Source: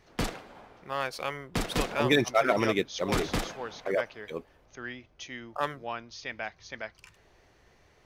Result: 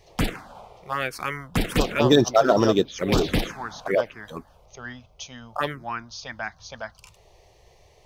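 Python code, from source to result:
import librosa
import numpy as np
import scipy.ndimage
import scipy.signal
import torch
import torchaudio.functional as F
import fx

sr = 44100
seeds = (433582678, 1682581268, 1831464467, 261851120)

y = fx.env_phaser(x, sr, low_hz=240.0, high_hz=2200.0, full_db=-22.5)
y = y * librosa.db_to_amplitude(8.5)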